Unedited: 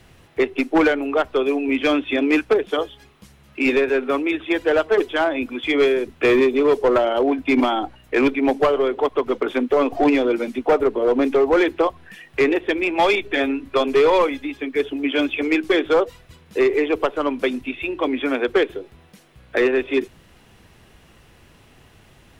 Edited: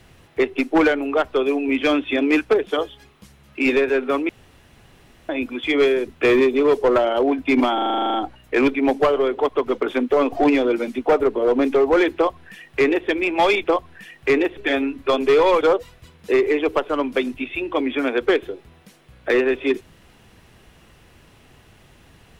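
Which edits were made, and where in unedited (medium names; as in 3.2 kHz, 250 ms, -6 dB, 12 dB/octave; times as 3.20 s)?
4.29–5.29 s: room tone
7.74 s: stutter 0.04 s, 11 plays
11.75–12.68 s: copy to 13.24 s
14.28–15.88 s: delete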